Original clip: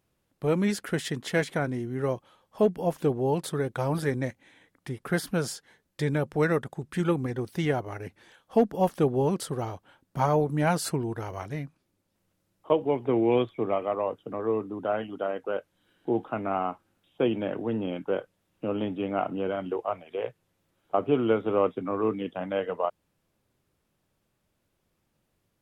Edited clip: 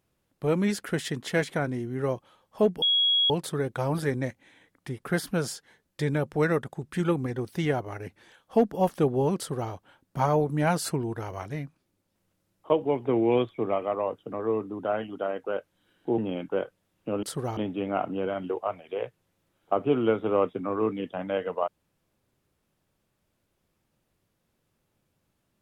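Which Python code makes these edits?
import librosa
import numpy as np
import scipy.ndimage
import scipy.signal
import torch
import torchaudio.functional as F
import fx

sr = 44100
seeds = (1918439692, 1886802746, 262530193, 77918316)

y = fx.edit(x, sr, fx.bleep(start_s=2.82, length_s=0.48, hz=3320.0, db=-19.5),
    fx.duplicate(start_s=9.37, length_s=0.34, to_s=18.79),
    fx.cut(start_s=16.18, length_s=1.56), tone=tone)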